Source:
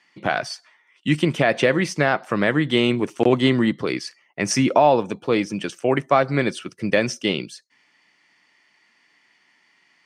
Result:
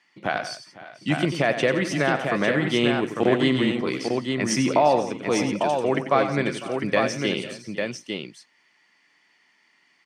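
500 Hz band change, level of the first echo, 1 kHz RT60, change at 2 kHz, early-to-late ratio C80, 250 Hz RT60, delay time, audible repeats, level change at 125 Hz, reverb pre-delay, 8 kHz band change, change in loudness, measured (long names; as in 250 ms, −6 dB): −2.0 dB, −10.0 dB, no reverb audible, −2.0 dB, no reverb audible, no reverb audible, 92 ms, 5, −3.5 dB, no reverb audible, −2.0 dB, −2.5 dB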